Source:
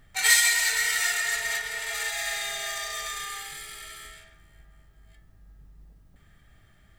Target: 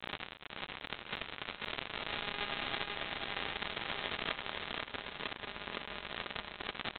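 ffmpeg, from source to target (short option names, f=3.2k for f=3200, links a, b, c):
-af "aeval=exprs='val(0)+0.5*0.0841*sgn(val(0))':c=same,lowpass=2.7k,afftfilt=real='re*lt(hypot(re,im),0.178)':imag='im*lt(hypot(re,im),0.178)':win_size=1024:overlap=0.75,highpass=290,adynamicequalizer=threshold=0.00447:dfrequency=1500:dqfactor=2.2:tfrequency=1500:tqfactor=2.2:attack=5:release=100:ratio=0.375:range=2:mode=cutabove:tftype=bell,aecho=1:1:4.9:0.89,alimiter=limit=-24dB:level=0:latency=1:release=102,aresample=8000,acrusher=bits=3:mix=0:aa=0.5,aresample=44100,aecho=1:1:490|980|1470|1960|2450:0.631|0.246|0.096|0.0374|0.0146,volume=7dB"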